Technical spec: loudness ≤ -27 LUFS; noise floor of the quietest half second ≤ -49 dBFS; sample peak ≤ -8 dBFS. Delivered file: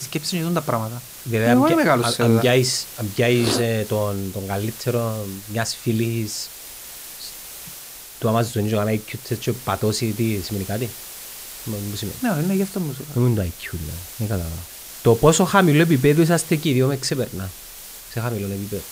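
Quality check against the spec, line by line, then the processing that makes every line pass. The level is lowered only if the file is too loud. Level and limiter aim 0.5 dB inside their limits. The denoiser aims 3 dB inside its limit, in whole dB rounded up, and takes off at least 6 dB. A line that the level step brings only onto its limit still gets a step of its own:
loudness -21.0 LUFS: fail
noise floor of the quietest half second -39 dBFS: fail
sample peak -2.0 dBFS: fail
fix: denoiser 7 dB, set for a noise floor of -39 dBFS; gain -6.5 dB

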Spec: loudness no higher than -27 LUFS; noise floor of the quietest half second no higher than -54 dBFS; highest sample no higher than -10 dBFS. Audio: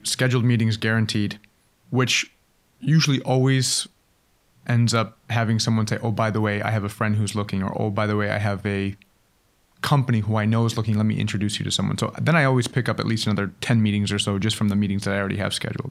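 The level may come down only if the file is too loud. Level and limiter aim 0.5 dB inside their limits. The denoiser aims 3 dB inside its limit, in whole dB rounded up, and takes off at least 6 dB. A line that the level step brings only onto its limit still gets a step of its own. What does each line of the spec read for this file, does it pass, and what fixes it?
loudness -22.5 LUFS: fail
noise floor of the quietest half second -63 dBFS: OK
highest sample -5.5 dBFS: fail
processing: gain -5 dB

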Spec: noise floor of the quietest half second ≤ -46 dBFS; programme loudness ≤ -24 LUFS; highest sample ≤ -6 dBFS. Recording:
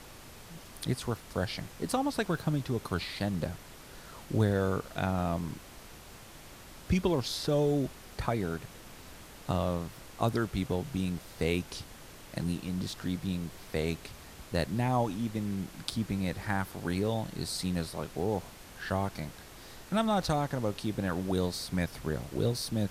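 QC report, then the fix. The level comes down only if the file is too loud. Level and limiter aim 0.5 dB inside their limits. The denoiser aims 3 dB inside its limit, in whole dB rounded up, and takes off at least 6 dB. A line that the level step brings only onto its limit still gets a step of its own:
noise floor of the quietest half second -50 dBFS: OK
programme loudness -33.0 LUFS: OK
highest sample -13.5 dBFS: OK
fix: none

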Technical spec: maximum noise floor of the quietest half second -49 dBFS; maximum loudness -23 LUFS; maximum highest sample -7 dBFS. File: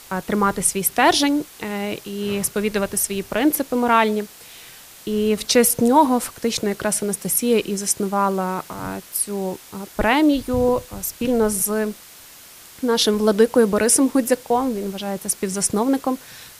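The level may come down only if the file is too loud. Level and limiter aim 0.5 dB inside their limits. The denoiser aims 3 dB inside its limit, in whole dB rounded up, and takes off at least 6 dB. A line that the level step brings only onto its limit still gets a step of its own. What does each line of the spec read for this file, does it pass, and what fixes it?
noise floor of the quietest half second -44 dBFS: fail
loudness -20.0 LUFS: fail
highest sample -3.5 dBFS: fail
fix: denoiser 6 dB, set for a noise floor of -44 dBFS; gain -3.5 dB; limiter -7.5 dBFS

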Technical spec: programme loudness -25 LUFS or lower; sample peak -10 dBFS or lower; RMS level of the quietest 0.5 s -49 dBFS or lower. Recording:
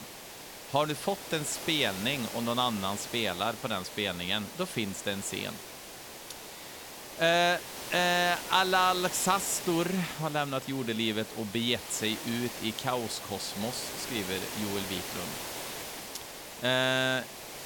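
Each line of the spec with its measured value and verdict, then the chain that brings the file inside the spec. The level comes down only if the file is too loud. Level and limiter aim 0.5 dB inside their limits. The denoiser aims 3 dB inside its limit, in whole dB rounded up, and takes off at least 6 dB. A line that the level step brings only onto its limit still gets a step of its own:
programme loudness -30.0 LUFS: OK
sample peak -12.0 dBFS: OK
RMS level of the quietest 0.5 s -46 dBFS: fail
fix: denoiser 6 dB, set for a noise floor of -46 dBFS

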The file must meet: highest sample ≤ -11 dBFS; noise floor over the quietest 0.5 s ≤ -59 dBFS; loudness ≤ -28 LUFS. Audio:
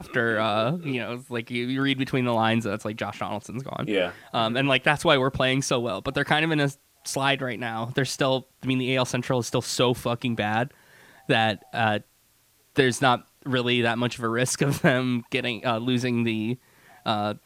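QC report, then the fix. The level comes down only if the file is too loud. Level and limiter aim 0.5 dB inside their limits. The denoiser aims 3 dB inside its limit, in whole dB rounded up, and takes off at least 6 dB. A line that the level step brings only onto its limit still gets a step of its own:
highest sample -3.5 dBFS: fail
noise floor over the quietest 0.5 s -63 dBFS: OK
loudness -25.0 LUFS: fail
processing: gain -3.5 dB; limiter -11.5 dBFS

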